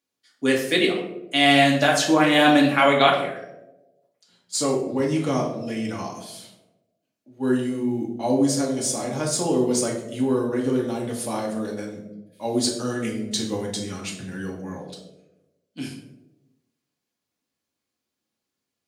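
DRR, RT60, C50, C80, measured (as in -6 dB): -2.0 dB, 1.0 s, 5.5 dB, 8.5 dB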